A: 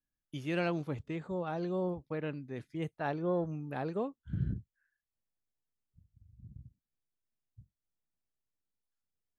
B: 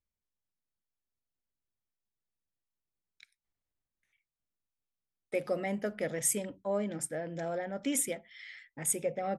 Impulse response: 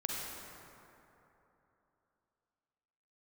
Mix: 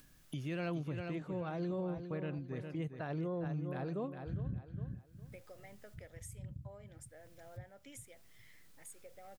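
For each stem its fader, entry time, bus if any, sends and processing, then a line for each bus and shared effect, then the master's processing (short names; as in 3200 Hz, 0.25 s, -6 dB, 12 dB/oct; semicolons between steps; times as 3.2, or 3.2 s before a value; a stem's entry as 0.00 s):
-2.5 dB, 0.00 s, no send, echo send -9.5 dB, bell 140 Hz +5.5 dB 0.83 oct; notch 840 Hz, Q 12; upward compressor, threshold -37 dBFS
-16.0 dB, 0.00 s, no send, no echo send, HPF 600 Hz 6 dB/oct; compressor, threshold -34 dBFS, peak gain reduction 9.5 dB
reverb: off
echo: feedback echo 0.407 s, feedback 29%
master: limiter -31.5 dBFS, peak gain reduction 10.5 dB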